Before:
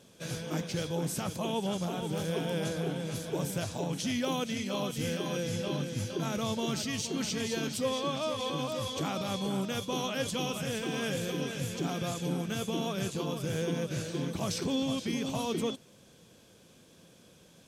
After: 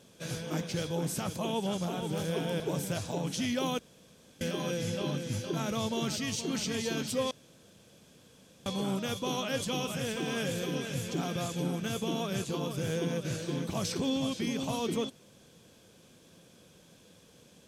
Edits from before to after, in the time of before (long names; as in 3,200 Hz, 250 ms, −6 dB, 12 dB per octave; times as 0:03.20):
0:02.60–0:03.26: remove
0:04.45–0:05.07: fill with room tone
0:07.97–0:09.32: fill with room tone